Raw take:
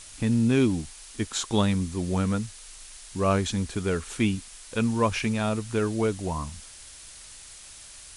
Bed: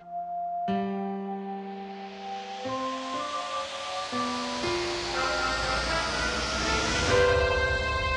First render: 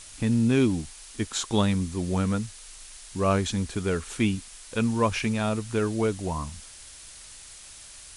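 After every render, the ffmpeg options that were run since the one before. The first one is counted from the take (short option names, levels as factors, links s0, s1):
-af anull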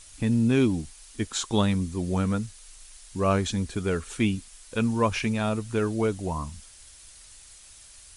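-af "afftdn=nr=6:nf=-46"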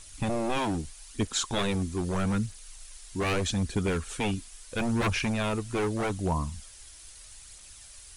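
-filter_complex "[0:a]acrossover=split=1900[s0][s1];[s0]aeval=exprs='0.0708*(abs(mod(val(0)/0.0708+3,4)-2)-1)':c=same[s2];[s2][s1]amix=inputs=2:normalize=0,aphaser=in_gain=1:out_gain=1:delay=3.1:decay=0.32:speed=0.79:type=triangular"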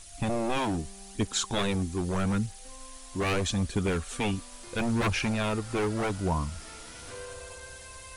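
-filter_complex "[1:a]volume=0.0944[s0];[0:a][s0]amix=inputs=2:normalize=0"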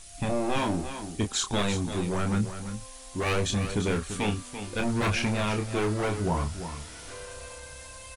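-filter_complex "[0:a]asplit=2[s0][s1];[s1]adelay=29,volume=0.501[s2];[s0][s2]amix=inputs=2:normalize=0,asplit=2[s3][s4];[s4]aecho=0:1:340:0.316[s5];[s3][s5]amix=inputs=2:normalize=0"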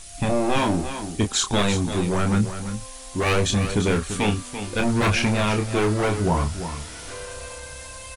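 -af "volume=2"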